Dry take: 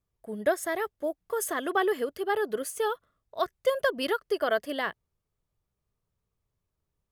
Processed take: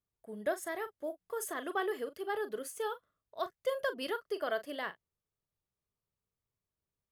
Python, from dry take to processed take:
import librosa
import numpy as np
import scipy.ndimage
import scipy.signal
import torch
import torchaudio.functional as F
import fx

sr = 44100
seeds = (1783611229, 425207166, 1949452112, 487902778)

y = fx.low_shelf(x, sr, hz=77.0, db=-9.0)
y = fx.doubler(y, sr, ms=39.0, db=-12.5)
y = y * librosa.db_to_amplitude(-8.0)